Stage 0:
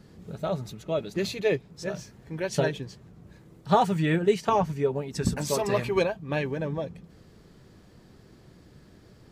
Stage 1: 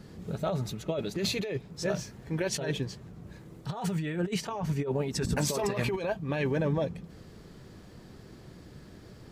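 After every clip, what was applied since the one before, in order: negative-ratio compressor -30 dBFS, ratio -1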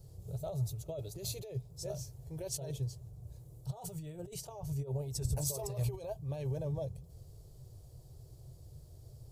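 EQ curve 130 Hz 0 dB, 210 Hz -29 dB, 380 Hz -14 dB, 650 Hz -9 dB, 1700 Hz -30 dB, 4600 Hz -11 dB, 11000 Hz +2 dB; gain +1 dB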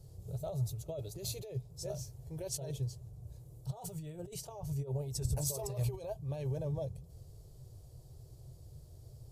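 Vorbis 128 kbps 32000 Hz

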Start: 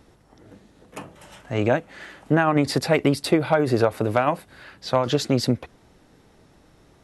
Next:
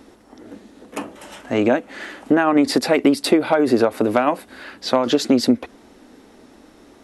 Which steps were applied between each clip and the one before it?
compressor 2:1, threshold -24 dBFS, peak gain reduction 6.5 dB; resonant low shelf 190 Hz -7.5 dB, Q 3; gain +7 dB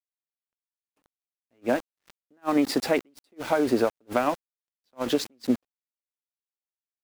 sample gate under -26.5 dBFS; attack slew limiter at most 530 dB/s; gain -6.5 dB

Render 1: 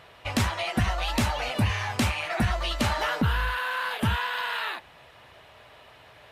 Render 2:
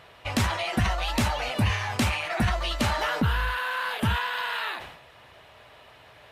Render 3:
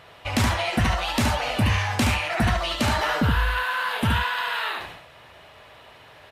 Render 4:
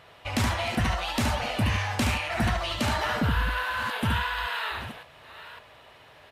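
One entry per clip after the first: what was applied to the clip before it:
sustainer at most 67 dB/s
echo 72 ms -4.5 dB; gain +2 dB
reverse delay 0.559 s, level -14 dB; gain -4 dB

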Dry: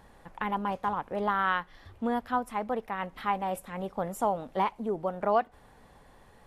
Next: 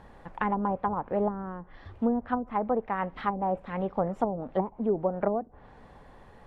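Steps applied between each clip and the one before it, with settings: treble ducked by the level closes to 370 Hz, closed at -24 dBFS; LPF 2100 Hz 6 dB/oct; gain +5 dB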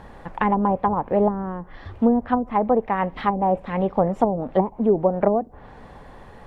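dynamic EQ 1400 Hz, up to -6 dB, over -50 dBFS, Q 3; gain +8.5 dB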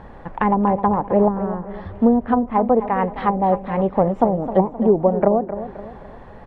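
LPF 1800 Hz 6 dB/oct; on a send: feedback echo 0.261 s, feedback 42%, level -12 dB; on the sum: gain +3 dB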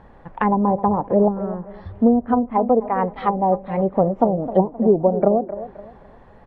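spectral noise reduction 7 dB; treble ducked by the level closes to 1300 Hz, closed at -14 dBFS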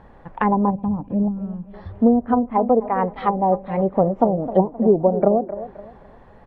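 spectral gain 0.7–1.73, 310–2300 Hz -15 dB

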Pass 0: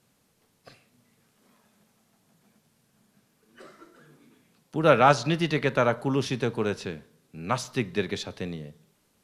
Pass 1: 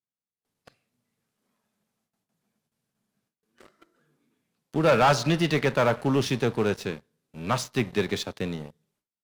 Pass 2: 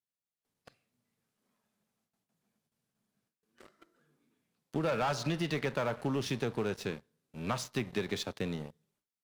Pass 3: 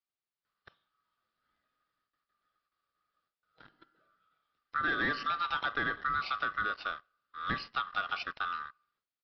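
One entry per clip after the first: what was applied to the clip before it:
gate with hold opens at -56 dBFS; sample leveller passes 3; gain -8 dB
compressor 5:1, threshold -26 dBFS, peak gain reduction 9 dB; gain -3.5 dB
band-swap scrambler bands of 1000 Hz; downsampling 11025 Hz

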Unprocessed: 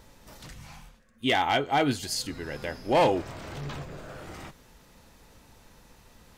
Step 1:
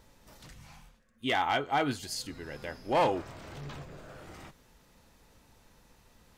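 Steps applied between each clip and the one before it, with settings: dynamic EQ 1200 Hz, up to +6 dB, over -39 dBFS, Q 1.5; gain -6 dB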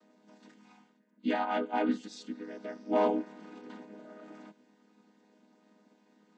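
chord vocoder minor triad, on G#3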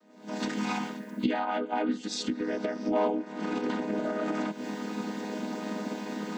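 recorder AGC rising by 67 dB/s

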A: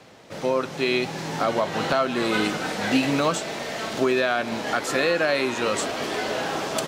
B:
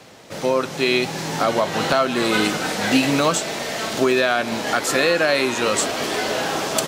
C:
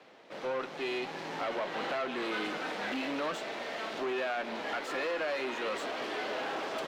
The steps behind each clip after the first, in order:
high shelf 5500 Hz +7.5 dB; gain +3.5 dB
tube stage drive 23 dB, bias 0.65; three-band isolator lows -18 dB, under 230 Hz, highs -19 dB, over 3900 Hz; gain -6.5 dB

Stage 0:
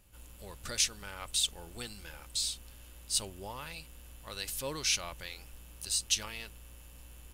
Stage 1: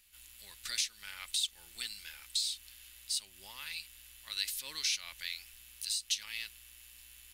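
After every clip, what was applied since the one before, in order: pre-emphasis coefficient 0.8; compressor 4:1, threshold -38 dBFS, peak gain reduction 10.5 dB; graphic EQ 125/500/2000/4000 Hz -8/-6/+12/+10 dB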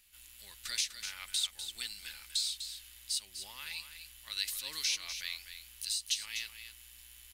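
echo 0.249 s -9.5 dB

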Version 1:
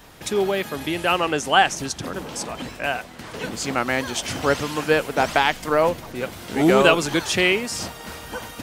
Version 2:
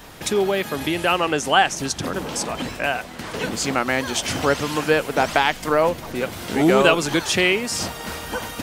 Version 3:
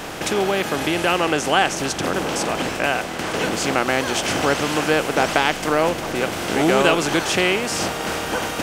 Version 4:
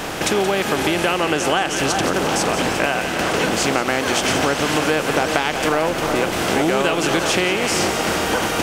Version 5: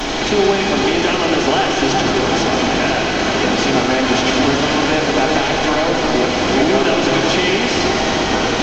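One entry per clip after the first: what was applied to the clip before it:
notches 60/120 Hz; in parallel at +2 dB: compressor, threshold -27 dBFS, peak gain reduction 16 dB; on the sum: gain -2 dB
per-bin compression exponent 0.6; gain -3.5 dB
split-band echo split 1500 Hz, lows 0.367 s, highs 0.175 s, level -9 dB; compressor, threshold -19 dBFS, peak gain reduction 8.5 dB; gain +4.5 dB
delta modulation 32 kbps, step -16 dBFS; reverb RT60 2.3 s, pre-delay 4 ms, DRR -5 dB; gain -4.5 dB

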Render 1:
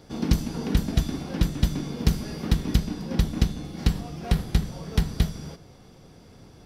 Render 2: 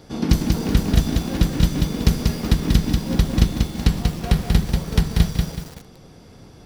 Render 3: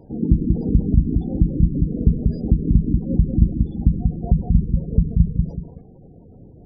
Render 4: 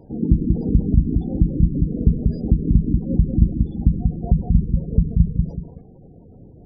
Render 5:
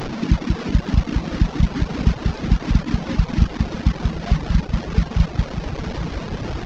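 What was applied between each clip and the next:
lo-fi delay 0.188 s, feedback 35%, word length 7-bit, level -3.5 dB; gain +4.5 dB
tilt shelf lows +4 dB, about 880 Hz; spectral gate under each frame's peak -20 dB strong; wow and flutter 28 cents; gain -2.5 dB
nothing audible
delta modulation 32 kbps, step -19.5 dBFS; diffused feedback echo 0.965 s, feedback 55%, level -9.5 dB; reverb removal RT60 0.83 s; gain -1 dB

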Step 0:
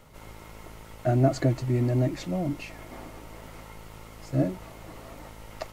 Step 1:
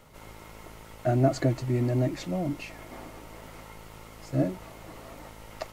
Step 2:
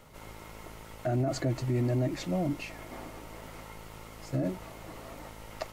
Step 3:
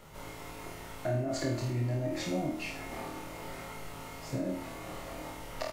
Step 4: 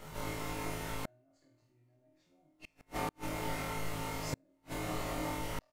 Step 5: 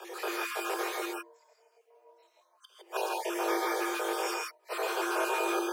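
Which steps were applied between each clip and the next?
low shelf 150 Hz -3.5 dB
limiter -21 dBFS, peak gain reduction 11.5 dB
compressor, threshold -31 dBFS, peak gain reduction 7 dB; doubler 48 ms -11 dB; flutter echo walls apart 4.4 m, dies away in 0.53 s
doubler 19 ms -2 dB; flipped gate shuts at -26 dBFS, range -41 dB; gain +2.5 dB
random spectral dropouts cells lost 53%; frequency shift +340 Hz; non-linear reverb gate 0.18 s rising, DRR -0.5 dB; gain +6.5 dB

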